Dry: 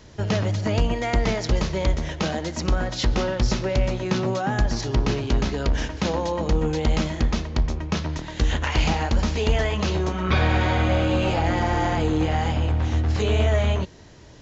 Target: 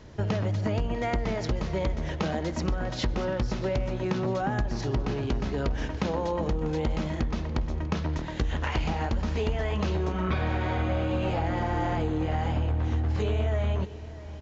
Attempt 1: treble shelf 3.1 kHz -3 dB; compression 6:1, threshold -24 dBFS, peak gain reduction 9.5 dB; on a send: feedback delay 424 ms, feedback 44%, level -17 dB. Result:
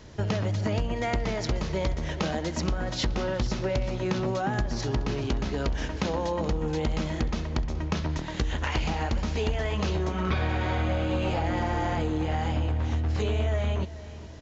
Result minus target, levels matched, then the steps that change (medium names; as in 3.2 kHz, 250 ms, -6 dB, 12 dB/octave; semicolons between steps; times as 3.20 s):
echo 220 ms early; 8 kHz band +5.0 dB
change: treble shelf 3.1 kHz -10 dB; change: feedback delay 644 ms, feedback 44%, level -17 dB